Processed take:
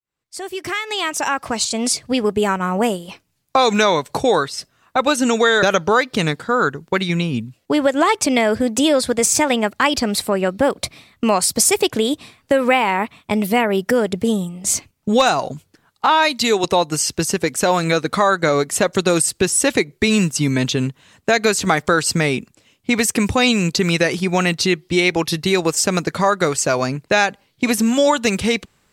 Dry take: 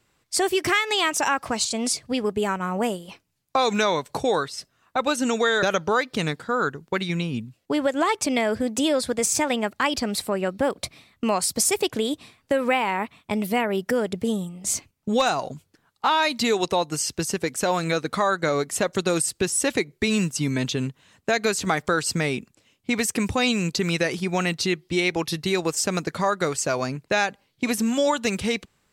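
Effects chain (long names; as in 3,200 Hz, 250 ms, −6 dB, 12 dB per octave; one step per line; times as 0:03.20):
fade in at the beginning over 2.12 s
0:16.06–0:16.64: multiband upward and downward expander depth 100%
level +6.5 dB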